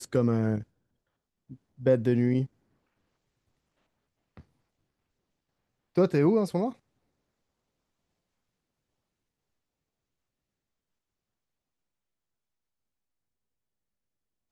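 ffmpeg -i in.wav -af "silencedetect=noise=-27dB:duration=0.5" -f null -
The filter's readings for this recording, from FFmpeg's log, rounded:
silence_start: 0.58
silence_end: 1.86 | silence_duration: 1.28
silence_start: 2.44
silence_end: 5.98 | silence_duration: 3.54
silence_start: 6.69
silence_end: 14.51 | silence_duration: 7.82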